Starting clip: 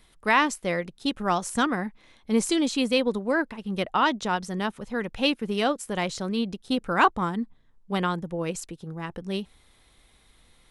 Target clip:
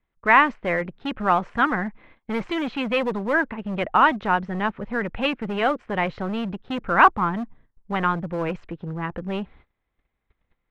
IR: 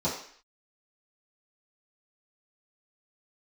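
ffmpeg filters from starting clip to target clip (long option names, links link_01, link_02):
-filter_complex "[0:a]agate=range=-24dB:threshold=-53dB:ratio=16:detection=peak,lowpass=frequency=2400:width=0.5412,lowpass=frequency=2400:width=1.3066,acrossover=split=650|1900[link_01][link_02][link_03];[link_01]volume=32.5dB,asoftclip=hard,volume=-32.5dB[link_04];[link_04][link_02][link_03]amix=inputs=3:normalize=0,volume=6.5dB"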